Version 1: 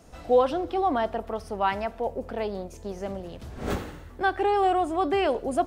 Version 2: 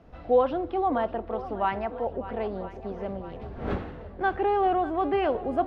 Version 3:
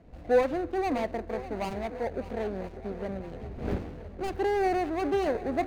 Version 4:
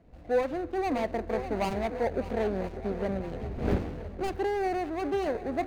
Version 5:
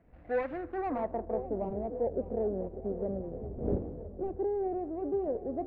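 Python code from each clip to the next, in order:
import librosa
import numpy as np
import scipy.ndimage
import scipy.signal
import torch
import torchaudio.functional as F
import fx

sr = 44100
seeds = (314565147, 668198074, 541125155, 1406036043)

y1 = fx.air_absorb(x, sr, metres=350.0)
y1 = fx.echo_swing(y1, sr, ms=999, ratio=1.5, feedback_pct=52, wet_db=-15.0)
y2 = scipy.signal.medfilt(y1, 41)
y3 = fx.rider(y2, sr, range_db=4, speed_s=0.5)
y4 = fx.filter_sweep_lowpass(y3, sr, from_hz=2000.0, to_hz=520.0, start_s=0.6, end_s=1.54, q=1.6)
y4 = y4 * 10.0 ** (-5.5 / 20.0)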